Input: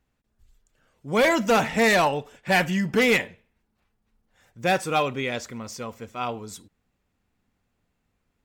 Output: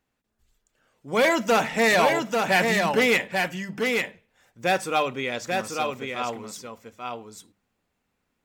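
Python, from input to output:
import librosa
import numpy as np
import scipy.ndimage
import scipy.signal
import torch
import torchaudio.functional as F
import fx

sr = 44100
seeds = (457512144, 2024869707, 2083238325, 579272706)

y = fx.low_shelf(x, sr, hz=130.0, db=-10.5)
y = fx.hum_notches(y, sr, base_hz=50, count=4)
y = y + 10.0 ** (-4.0 / 20.0) * np.pad(y, (int(841 * sr / 1000.0), 0))[:len(y)]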